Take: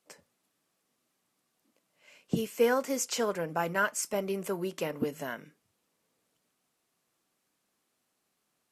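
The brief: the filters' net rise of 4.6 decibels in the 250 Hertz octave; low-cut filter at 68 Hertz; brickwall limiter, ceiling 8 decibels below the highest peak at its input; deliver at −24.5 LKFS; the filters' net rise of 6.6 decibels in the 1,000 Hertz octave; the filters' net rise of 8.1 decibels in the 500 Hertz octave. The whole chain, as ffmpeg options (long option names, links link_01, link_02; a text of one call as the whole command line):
ffmpeg -i in.wav -af "highpass=68,equalizer=frequency=250:width_type=o:gain=3.5,equalizer=frequency=500:width_type=o:gain=7,equalizer=frequency=1000:width_type=o:gain=6,volume=2.5dB,alimiter=limit=-12dB:level=0:latency=1" out.wav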